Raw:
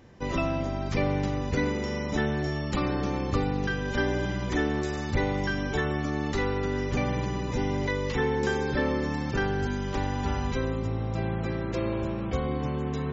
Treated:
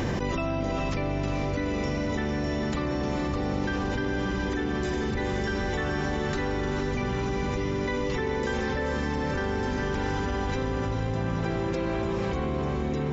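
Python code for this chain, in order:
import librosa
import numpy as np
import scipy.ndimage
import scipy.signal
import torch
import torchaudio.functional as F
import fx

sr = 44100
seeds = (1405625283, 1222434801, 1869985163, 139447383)

p1 = x + fx.echo_diffused(x, sr, ms=470, feedback_pct=64, wet_db=-3.5, dry=0)
p2 = fx.env_flatten(p1, sr, amount_pct=100)
y = p2 * librosa.db_to_amplitude(-7.0)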